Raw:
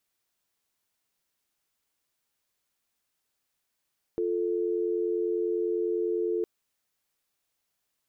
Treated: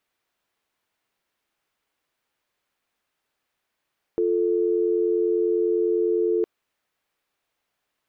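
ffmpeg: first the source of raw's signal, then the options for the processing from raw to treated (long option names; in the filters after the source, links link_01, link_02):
-f lavfi -i "aevalsrc='0.0398*(sin(2*PI*350*t)+sin(2*PI*440*t))':duration=2.26:sample_rate=44100"
-af "bass=frequency=250:gain=-5,treble=frequency=4000:gain=-12,acontrast=84"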